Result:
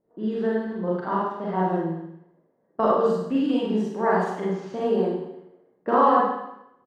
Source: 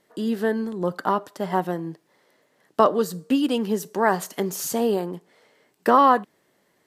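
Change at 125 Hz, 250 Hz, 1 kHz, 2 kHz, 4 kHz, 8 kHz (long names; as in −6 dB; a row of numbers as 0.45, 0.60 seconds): +1.5 dB, −0.5 dB, −1.5 dB, −3.5 dB, −7.5 dB, below −20 dB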